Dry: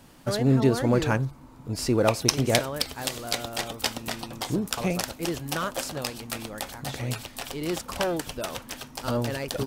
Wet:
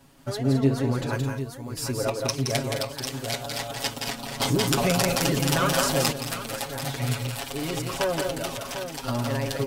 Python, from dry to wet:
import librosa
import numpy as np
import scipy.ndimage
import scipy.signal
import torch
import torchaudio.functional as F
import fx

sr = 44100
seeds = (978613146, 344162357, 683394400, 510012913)

y = x + 0.94 * np.pad(x, (int(7.3 * sr / 1000.0), 0))[:len(x)]
y = fx.echo_multitap(y, sr, ms=(171, 212, 214, 750), db=(-5.0, -16.5, -11.0, -7.5))
y = fx.rider(y, sr, range_db=10, speed_s=2.0)
y = fx.high_shelf(y, sr, hz=6200.0, db=12.0, at=(1.13, 2.05))
y = fx.env_flatten(y, sr, amount_pct=50, at=(4.39, 6.11), fade=0.02)
y = F.gain(torch.from_numpy(y), -7.0).numpy()